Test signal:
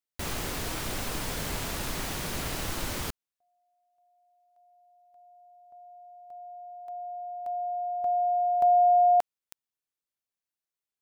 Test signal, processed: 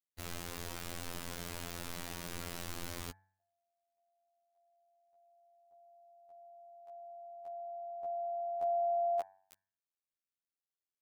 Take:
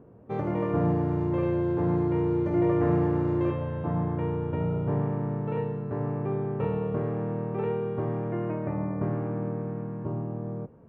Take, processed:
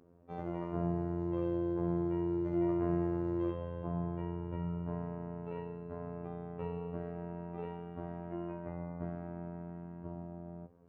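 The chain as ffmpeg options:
-af "afftfilt=real='hypot(re,im)*cos(PI*b)':imag='0':win_size=2048:overlap=0.75,bandreject=f=95.91:t=h:w=4,bandreject=f=191.82:t=h:w=4,bandreject=f=287.73:t=h:w=4,bandreject=f=383.64:t=h:w=4,bandreject=f=479.55:t=h:w=4,bandreject=f=575.46:t=h:w=4,bandreject=f=671.37:t=h:w=4,bandreject=f=767.28:t=h:w=4,bandreject=f=863.19:t=h:w=4,bandreject=f=959.1:t=h:w=4,bandreject=f=1.05501k:t=h:w=4,bandreject=f=1.15092k:t=h:w=4,bandreject=f=1.24683k:t=h:w=4,bandreject=f=1.34274k:t=h:w=4,bandreject=f=1.43865k:t=h:w=4,bandreject=f=1.53456k:t=h:w=4,bandreject=f=1.63047k:t=h:w=4,bandreject=f=1.72638k:t=h:w=4,bandreject=f=1.82229k:t=h:w=4,bandreject=f=1.9182k:t=h:w=4,bandreject=f=2.01411k:t=h:w=4,bandreject=f=2.11002k:t=h:w=4,bandreject=f=2.20593k:t=h:w=4,bandreject=f=2.30184k:t=h:w=4,volume=-6.5dB"

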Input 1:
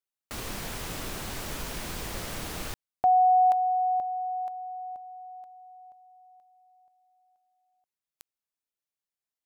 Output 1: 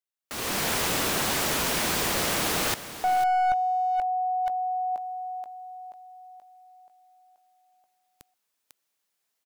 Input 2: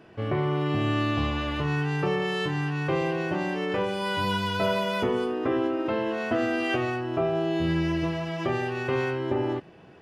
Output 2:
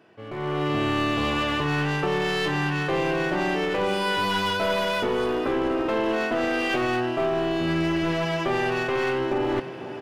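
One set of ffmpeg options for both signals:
-af "highpass=f=260:p=1,areverse,acompressor=threshold=-39dB:ratio=4:attack=84:release=136:knee=1:detection=rms,areverse,aecho=1:1:498:0.211,aeval=exprs='clip(val(0),-1,0.0158)':c=same,dynaudnorm=f=120:g=7:m=16.5dB,volume=-3dB"

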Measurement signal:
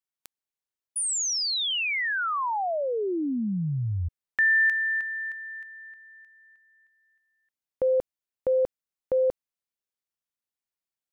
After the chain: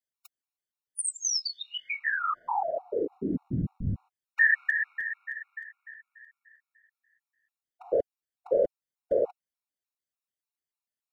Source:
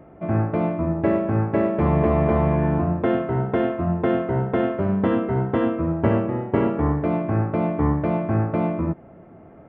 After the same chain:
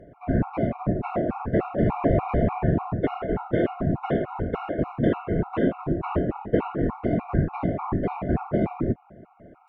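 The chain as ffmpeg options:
-af "afftfilt=real='hypot(re,im)*cos(2*PI*random(0))':imag='hypot(re,im)*sin(2*PI*random(1))':win_size=512:overlap=0.75,afftfilt=real='re*gt(sin(2*PI*3.4*pts/sr)*(1-2*mod(floor(b*sr/1024/730),2)),0)':imag='im*gt(sin(2*PI*3.4*pts/sr)*(1-2*mod(floor(b*sr/1024/730),2)),0)':win_size=1024:overlap=0.75,volume=5.5dB"

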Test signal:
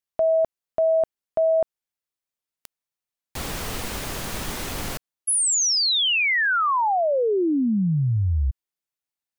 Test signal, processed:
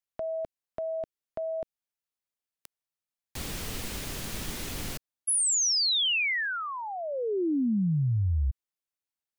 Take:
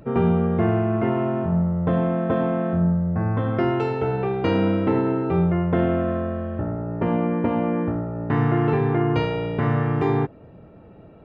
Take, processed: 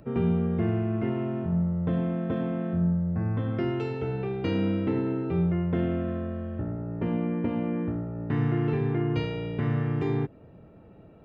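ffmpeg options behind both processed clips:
-filter_complex "[0:a]acrossover=split=450|1800[a][b][c];[b]acompressor=threshold=-60dB:ratio=1.5:release=102:knee=2.83:detection=peak[d];[a][d][c]amix=inputs=3:normalize=0,volume=-4.5dB"

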